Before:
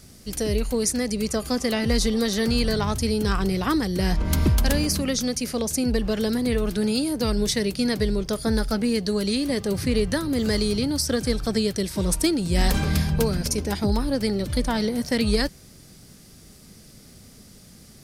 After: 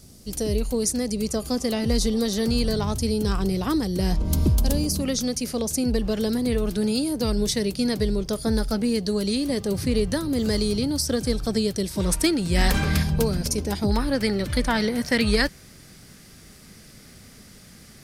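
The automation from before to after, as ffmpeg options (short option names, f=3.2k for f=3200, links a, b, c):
-af "asetnsamples=n=441:p=0,asendcmd='4.18 equalizer g -15;5 equalizer g -4.5;12 equalizer g 4.5;13.03 equalizer g -3.5;13.91 equalizer g 7',equalizer=f=1.8k:t=o:w=1.5:g=-7.5"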